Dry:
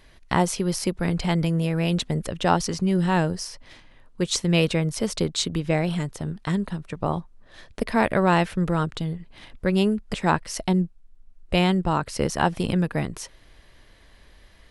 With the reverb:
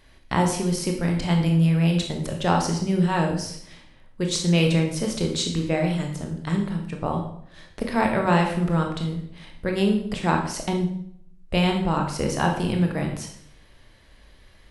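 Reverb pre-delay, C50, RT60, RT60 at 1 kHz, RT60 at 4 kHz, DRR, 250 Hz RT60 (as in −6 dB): 19 ms, 6.0 dB, 0.65 s, 0.60 s, 0.55 s, 2.0 dB, 0.75 s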